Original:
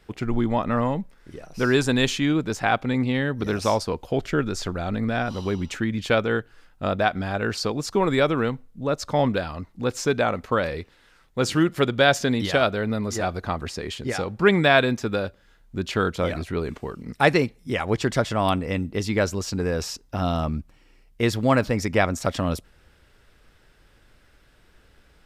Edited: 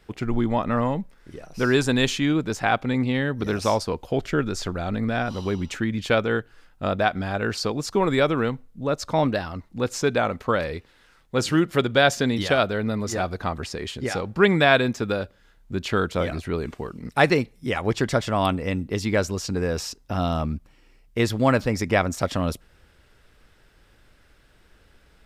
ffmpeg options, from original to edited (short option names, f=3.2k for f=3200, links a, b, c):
-filter_complex "[0:a]asplit=3[a][b][c];[a]atrim=end=9.134[d];[b]atrim=start=9.13:end=9.59,asetpts=PTS-STARTPTS,asetrate=47628,aresample=44100,atrim=end_sample=18783,asetpts=PTS-STARTPTS[e];[c]atrim=start=9.586[f];[d][e]acrossfade=d=0.004:c1=hsin:c2=hsin[g];[g][f]acrossfade=d=0.004:c1=hsin:c2=hsin"